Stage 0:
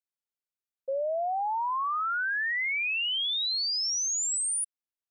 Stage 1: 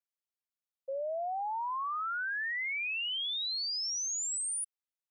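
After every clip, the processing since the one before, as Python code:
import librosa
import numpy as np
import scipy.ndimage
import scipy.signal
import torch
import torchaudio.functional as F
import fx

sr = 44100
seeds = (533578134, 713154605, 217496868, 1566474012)

y = scipy.signal.sosfilt(scipy.signal.butter(6, 470.0, 'highpass', fs=sr, output='sos'), x)
y = y * librosa.db_to_amplitude(-5.5)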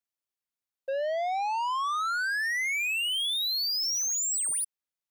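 y = fx.leveller(x, sr, passes=2)
y = y * librosa.db_to_amplitude(4.5)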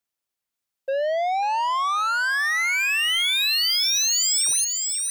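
y = fx.echo_wet_highpass(x, sr, ms=541, feedback_pct=38, hz=1800.0, wet_db=-3.5)
y = y * librosa.db_to_amplitude(6.0)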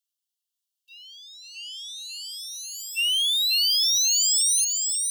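y = fx.brickwall_highpass(x, sr, low_hz=2700.0)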